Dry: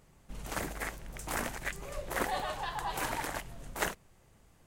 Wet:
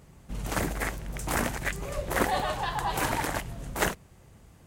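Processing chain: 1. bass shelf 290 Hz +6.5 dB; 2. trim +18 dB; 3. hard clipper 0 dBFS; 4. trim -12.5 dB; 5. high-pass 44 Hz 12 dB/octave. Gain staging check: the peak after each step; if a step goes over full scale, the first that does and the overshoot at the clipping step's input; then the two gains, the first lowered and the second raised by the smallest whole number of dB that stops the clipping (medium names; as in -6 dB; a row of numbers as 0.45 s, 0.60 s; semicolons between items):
-13.5 dBFS, +4.5 dBFS, 0.0 dBFS, -12.5 dBFS, -11.5 dBFS; step 2, 4.5 dB; step 2 +13 dB, step 4 -7.5 dB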